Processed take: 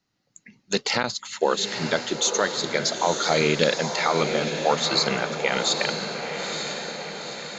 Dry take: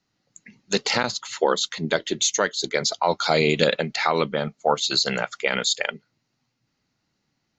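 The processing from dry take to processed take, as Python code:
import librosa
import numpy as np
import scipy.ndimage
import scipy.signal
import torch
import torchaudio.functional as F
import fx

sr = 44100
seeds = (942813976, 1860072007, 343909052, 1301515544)

p1 = x + fx.echo_diffused(x, sr, ms=927, feedback_pct=57, wet_db=-6.0, dry=0)
y = p1 * librosa.db_to_amplitude(-1.5)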